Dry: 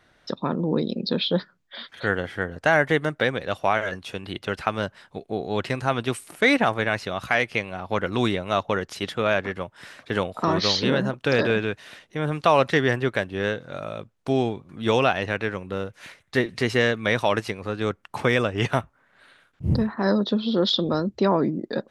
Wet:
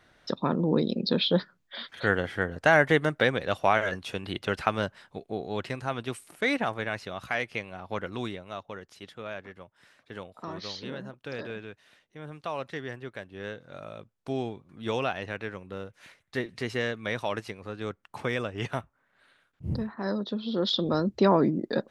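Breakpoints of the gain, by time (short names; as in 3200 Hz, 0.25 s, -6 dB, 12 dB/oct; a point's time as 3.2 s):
4.64 s -1 dB
5.84 s -8 dB
7.97 s -8 dB
8.61 s -16 dB
13.11 s -16 dB
13.8 s -9 dB
20.34 s -9 dB
21.12 s -0.5 dB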